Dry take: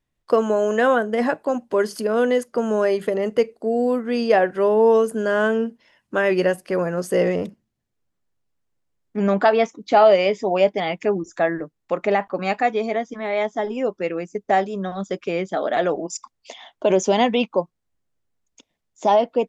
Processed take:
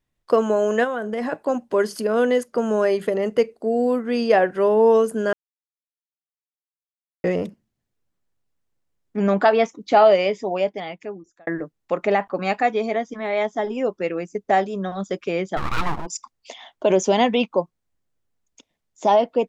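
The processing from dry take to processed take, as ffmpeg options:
-filter_complex "[0:a]asplit=3[a][b][c];[a]afade=t=out:st=0.83:d=0.02[d];[b]acompressor=threshold=-22dB:ratio=6:attack=3.2:release=140:knee=1:detection=peak,afade=t=in:st=0.83:d=0.02,afade=t=out:st=1.31:d=0.02[e];[c]afade=t=in:st=1.31:d=0.02[f];[d][e][f]amix=inputs=3:normalize=0,asplit=3[g][h][i];[g]afade=t=out:st=15.56:d=0.02[j];[h]aeval=exprs='abs(val(0))':c=same,afade=t=in:st=15.56:d=0.02,afade=t=out:st=16.05:d=0.02[k];[i]afade=t=in:st=16.05:d=0.02[l];[j][k][l]amix=inputs=3:normalize=0,asplit=4[m][n][o][p];[m]atrim=end=5.33,asetpts=PTS-STARTPTS,afade=t=out:st=5.326:d=0.004:c=hsin[q];[n]atrim=start=5.33:end=7.24,asetpts=PTS-STARTPTS,volume=0[r];[o]atrim=start=7.24:end=11.47,asetpts=PTS-STARTPTS,afade=t=in:d=0.004:c=hsin,afade=t=out:st=2.74:d=1.49[s];[p]atrim=start=11.47,asetpts=PTS-STARTPTS,afade=t=in:d=0.004:c=hsin[t];[q][r][s][t]concat=n=4:v=0:a=1"

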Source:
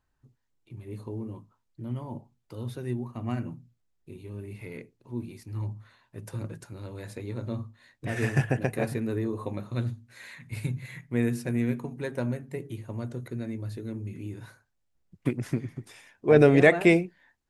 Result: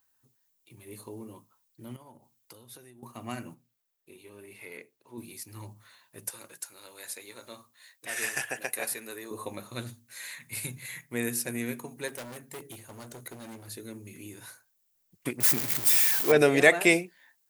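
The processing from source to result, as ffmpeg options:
-filter_complex "[0:a]asettb=1/sr,asplit=3[a][b][c];[a]atrim=end=1.964[d];[b]atrim=start=1.96:end=3.03,asetpts=PTS-STARTPTS,afade=t=in:d=0.004:c=qsin,afade=t=out:st=1.066:d=0.004:c=qsin,acompressor=threshold=-43dB:ratio=10:attack=3.2:release=140:knee=1:detection=peak[e];[c]atrim=start=3.026[f];[d][e]acrossfade=d=0.004:c1=hsin:c2=qsin[g];[g][f]acrossfade=d=0.004:c1=qsin:c2=hsin,asettb=1/sr,asplit=3[h][i][j];[h]atrim=end=3.544[k];[i]atrim=start=3.54:end=5.18,asetpts=PTS-STARTPTS,afade=t=in:d=0.004:c=qsin,afade=t=out:st=1.636:d=0.004:c=qsin,bass=f=250:g=-9,treble=f=4k:g=-8[l];[j]atrim=start=5.176[m];[k][l]acrossfade=d=0.004:c1=hsin:c2=qsin[n];[n][m]acrossfade=d=0.004:c1=qsin:c2=hsin,asettb=1/sr,asplit=3[o][p][q];[o]atrim=end=6.304[r];[p]atrim=start=6.3:end=9.31,asetpts=PTS-STARTPTS,afade=t=in:d=0.004:c=qsin,afade=t=out:st=3.006:d=0.004:c=qsin,highpass=f=880:p=1[s];[q]atrim=start=9.306[t];[r][s]acrossfade=d=0.004:c1=hsin:c2=qsin[u];[u][t]acrossfade=d=0.004:c1=qsin:c2=hsin,asettb=1/sr,asplit=3[v][w][x];[v]atrim=end=12.084[y];[w]atrim=start=12.08:end=13.68,asetpts=PTS-STARTPTS,afade=t=in:d=0.004:c=qsin,afade=t=out:st=1.596:d=0.004:c=qsin,asoftclip=type=hard:threshold=-35dB[z];[x]atrim=start=13.676[aa];[y][z]acrossfade=d=0.004:c1=hsin:c2=qsin[ab];[ab][aa]acrossfade=d=0.004:c1=qsin:c2=hsin,asettb=1/sr,asplit=3[ac][ad][ae];[ac]atrim=end=15.404[af];[ad]atrim=start=15.4:end=16.32,asetpts=PTS-STARTPTS,afade=t=in:d=0.004:c=qsin,afade=t=out:st=0.916:d=0.004:c=qsin,aeval=exprs='val(0)+0.5*0.0282*sgn(val(0))':c=same[ag];[ae]atrim=start=16.316[ah];[af][ag]acrossfade=d=0.004:c1=hsin:c2=qsin[ai];[ai][ah]acrossfade=d=0.004:c1=qsin:c2=hsin,aemphasis=mode=production:type=riaa"

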